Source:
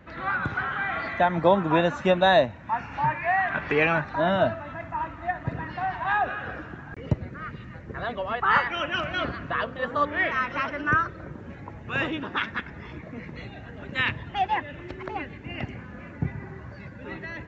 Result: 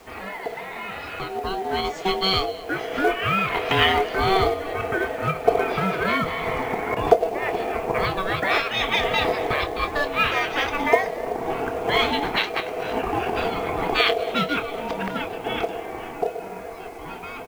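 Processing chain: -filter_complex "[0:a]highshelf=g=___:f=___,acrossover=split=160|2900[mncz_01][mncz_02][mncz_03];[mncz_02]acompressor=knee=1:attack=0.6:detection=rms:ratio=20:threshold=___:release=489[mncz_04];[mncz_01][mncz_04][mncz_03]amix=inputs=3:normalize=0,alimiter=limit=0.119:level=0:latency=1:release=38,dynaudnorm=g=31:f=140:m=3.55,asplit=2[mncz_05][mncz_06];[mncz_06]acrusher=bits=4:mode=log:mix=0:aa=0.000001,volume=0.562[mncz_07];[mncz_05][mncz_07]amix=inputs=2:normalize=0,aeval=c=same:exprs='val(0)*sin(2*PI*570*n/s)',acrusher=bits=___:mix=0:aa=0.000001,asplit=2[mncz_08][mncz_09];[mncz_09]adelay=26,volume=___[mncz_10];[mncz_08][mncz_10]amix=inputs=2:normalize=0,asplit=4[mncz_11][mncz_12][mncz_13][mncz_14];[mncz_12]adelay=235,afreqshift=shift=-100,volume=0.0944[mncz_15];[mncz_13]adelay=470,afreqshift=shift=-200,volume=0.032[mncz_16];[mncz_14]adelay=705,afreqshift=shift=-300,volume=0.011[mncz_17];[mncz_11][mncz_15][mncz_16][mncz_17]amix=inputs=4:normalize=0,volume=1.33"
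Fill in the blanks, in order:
-3, 3700, 0.0224, 8, 0.282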